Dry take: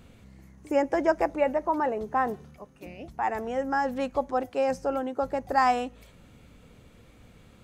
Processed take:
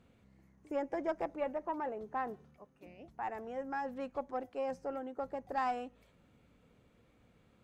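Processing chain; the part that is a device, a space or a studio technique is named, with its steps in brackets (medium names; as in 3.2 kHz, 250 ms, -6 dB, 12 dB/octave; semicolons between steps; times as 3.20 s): tube preamp driven hard (valve stage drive 15 dB, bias 0.4; bass shelf 97 Hz -8 dB; treble shelf 3.4 kHz -8.5 dB); trim -9 dB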